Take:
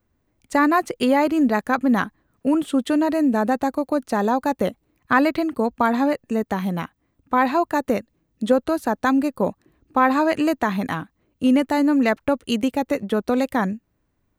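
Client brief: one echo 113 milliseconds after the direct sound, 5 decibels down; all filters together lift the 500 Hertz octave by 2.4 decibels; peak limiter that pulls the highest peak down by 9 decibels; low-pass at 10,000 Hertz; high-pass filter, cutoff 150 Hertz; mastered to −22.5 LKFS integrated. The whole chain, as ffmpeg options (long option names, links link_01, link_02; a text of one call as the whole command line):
ffmpeg -i in.wav -af "highpass=150,lowpass=10000,equalizer=frequency=500:width_type=o:gain=3,alimiter=limit=-11.5dB:level=0:latency=1,aecho=1:1:113:0.562,volume=-1dB" out.wav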